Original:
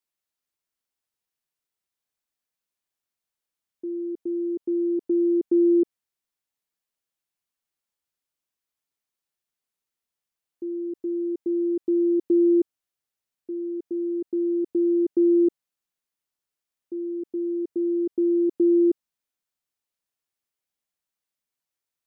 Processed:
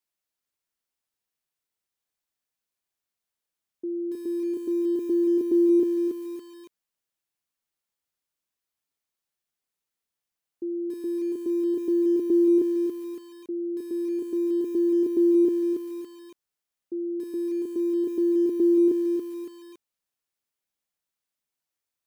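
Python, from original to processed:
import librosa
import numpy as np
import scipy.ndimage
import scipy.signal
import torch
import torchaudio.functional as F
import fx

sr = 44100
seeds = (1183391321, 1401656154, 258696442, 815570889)

y = fx.echo_crushed(x, sr, ms=281, feedback_pct=35, bits=8, wet_db=-6)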